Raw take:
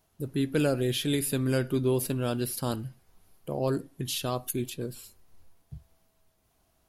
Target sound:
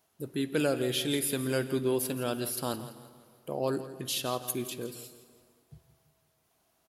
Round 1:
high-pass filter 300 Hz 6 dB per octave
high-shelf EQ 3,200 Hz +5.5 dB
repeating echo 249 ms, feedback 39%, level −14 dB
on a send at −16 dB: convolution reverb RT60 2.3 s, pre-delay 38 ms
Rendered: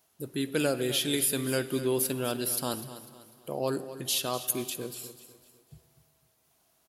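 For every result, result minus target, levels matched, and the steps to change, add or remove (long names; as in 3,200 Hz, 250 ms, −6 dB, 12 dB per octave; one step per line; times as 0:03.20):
echo 82 ms late; 8,000 Hz band +3.0 dB
change: repeating echo 167 ms, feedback 39%, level −14 dB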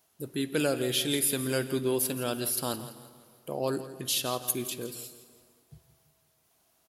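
8,000 Hz band +3.0 dB
remove: high-shelf EQ 3,200 Hz +5.5 dB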